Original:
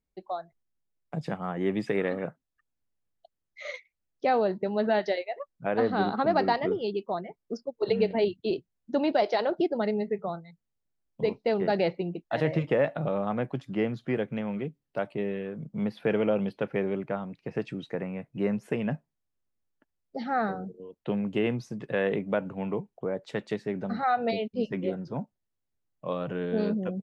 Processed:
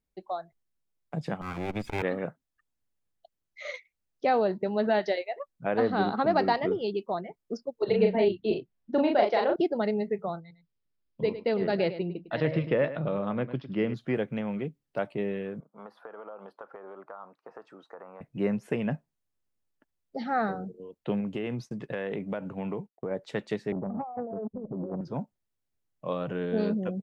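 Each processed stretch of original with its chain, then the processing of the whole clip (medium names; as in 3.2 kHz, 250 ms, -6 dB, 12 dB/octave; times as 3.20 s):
1.41–2.02 s: comb filter that takes the minimum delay 0.83 ms + treble shelf 5.4 kHz +5 dB + transformer saturation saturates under 210 Hz
7.85–9.56 s: low-pass 3.4 kHz + doubling 37 ms -3 dB
10.40–13.94 s: Chebyshev low-pass 5.2 kHz, order 5 + peaking EQ 760 Hz -7.5 dB 0.35 oct + delay 104 ms -13 dB
15.60–18.21 s: high-pass 680 Hz + compression 12:1, threshold -40 dBFS + resonant high shelf 1.7 kHz -11.5 dB, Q 3
21.20–23.11 s: expander -44 dBFS + compression, threshold -28 dBFS
23.72–25.01 s: steep low-pass 1.1 kHz 72 dB/octave + compressor with a negative ratio -34 dBFS + transformer saturation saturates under 340 Hz
whole clip: none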